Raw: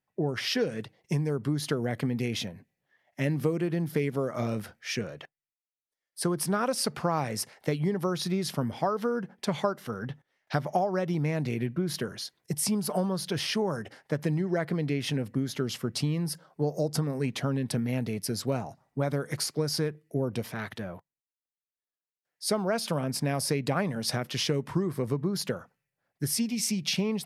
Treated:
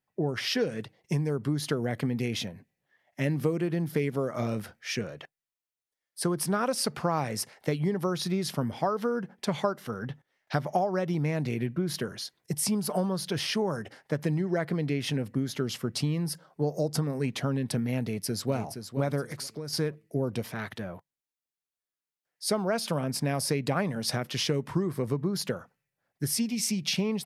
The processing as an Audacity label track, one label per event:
18.010000	18.530000	delay throw 470 ms, feedback 30%, level −8.5 dB
19.320000	19.730000	downward compressor 2.5 to 1, threshold −36 dBFS

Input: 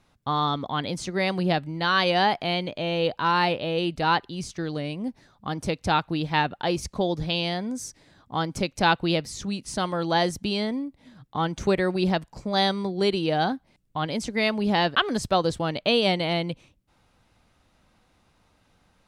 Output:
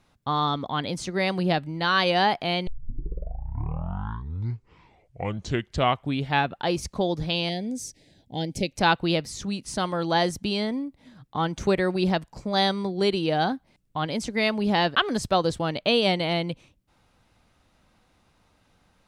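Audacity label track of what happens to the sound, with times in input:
2.670000	2.670000	tape start 3.97 s
7.490000	8.730000	Butterworth band-reject 1,200 Hz, Q 0.89

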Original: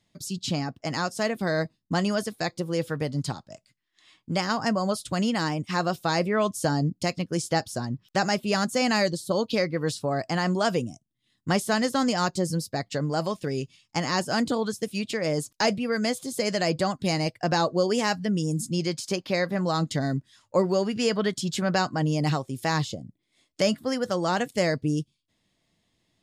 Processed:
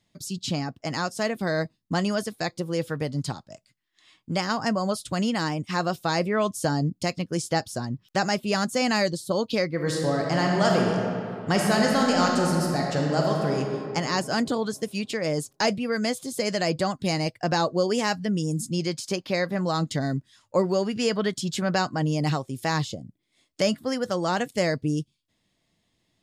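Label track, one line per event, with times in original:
9.740000	13.580000	thrown reverb, RT60 2.6 s, DRR −1 dB

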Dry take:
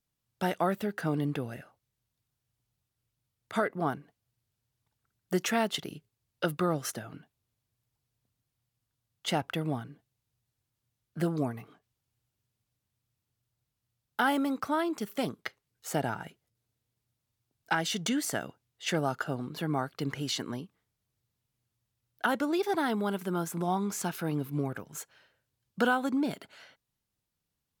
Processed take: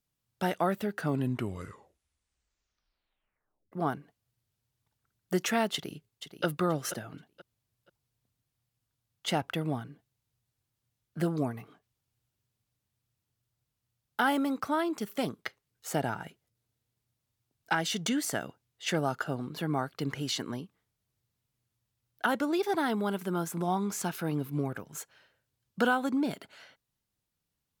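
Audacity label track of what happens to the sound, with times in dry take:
0.950000	0.950000	tape stop 2.77 s
5.730000	6.450000	delay throw 480 ms, feedback 25%, level −10.5 dB

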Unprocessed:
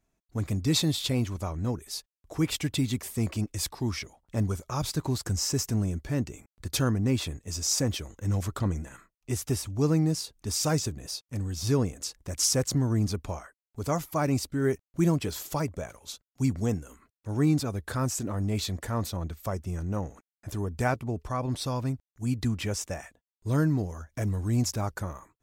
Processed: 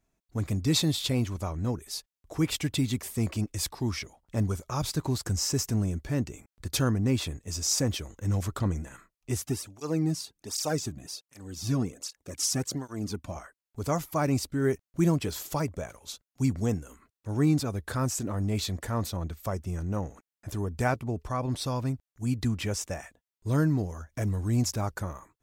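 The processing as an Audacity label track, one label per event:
9.420000	13.360000	through-zero flanger with one copy inverted nulls at 1.3 Hz, depth 2.5 ms

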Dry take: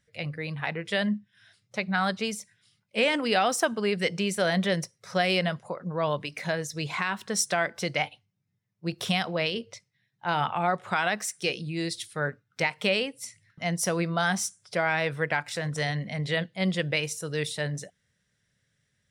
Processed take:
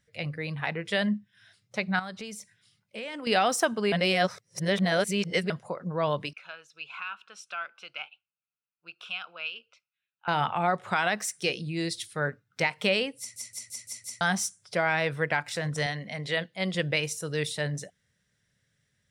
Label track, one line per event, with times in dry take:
1.990000	3.270000	downward compressor 3 to 1, threshold −38 dBFS
3.920000	5.500000	reverse
6.330000	10.280000	pair of resonant band-passes 1,900 Hz, apart 0.9 octaves
13.190000	13.190000	stutter in place 0.17 s, 6 plays
15.860000	16.750000	low-shelf EQ 180 Hz −11.5 dB

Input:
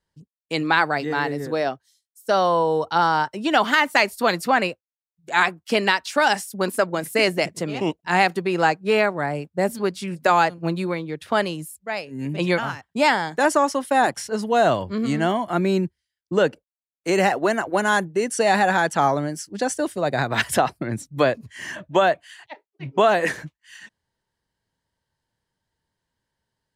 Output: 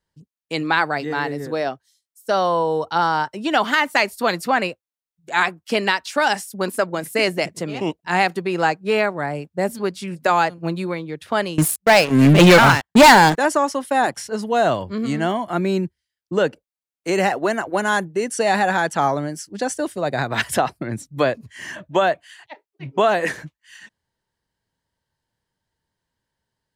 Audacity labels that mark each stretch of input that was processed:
11.580000	13.380000	leveller curve on the samples passes 5

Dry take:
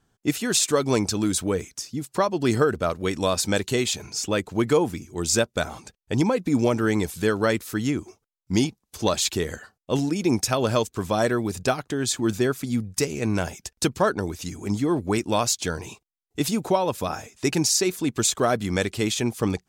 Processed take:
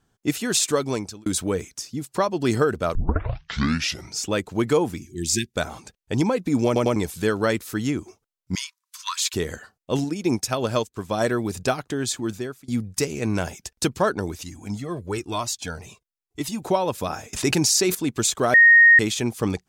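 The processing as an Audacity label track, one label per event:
0.720000	1.260000	fade out
2.950000	2.950000	tape start 1.21 s
5.000000	5.540000	linear-phase brick-wall band-stop 410–1,600 Hz
6.660000	6.660000	stutter in place 0.10 s, 3 plays
8.550000	9.340000	Chebyshev high-pass filter 960 Hz, order 10
10.040000	11.210000	expander for the loud parts, over −42 dBFS
11.980000	12.680000	fade out, to −23.5 dB
14.430000	16.620000	flanger whose copies keep moving one way falling 1 Hz
17.330000	17.950000	envelope flattener amount 70%
18.540000	18.990000	beep over 1,860 Hz −8.5 dBFS

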